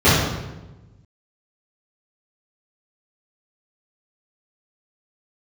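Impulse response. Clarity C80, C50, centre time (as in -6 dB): 2.5 dB, -0.5 dB, 78 ms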